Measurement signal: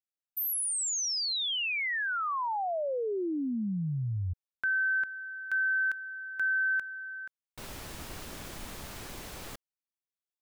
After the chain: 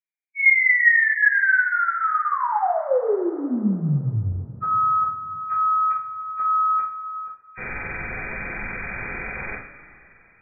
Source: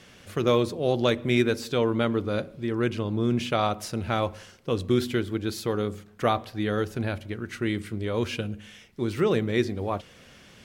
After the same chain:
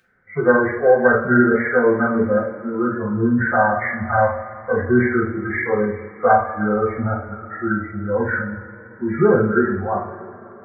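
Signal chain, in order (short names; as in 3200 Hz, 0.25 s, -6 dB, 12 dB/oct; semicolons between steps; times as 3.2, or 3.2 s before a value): nonlinear frequency compression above 1200 Hz 4:1; spectral noise reduction 22 dB; two-slope reverb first 0.44 s, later 3.2 s, from -18 dB, DRR -5 dB; gain +3 dB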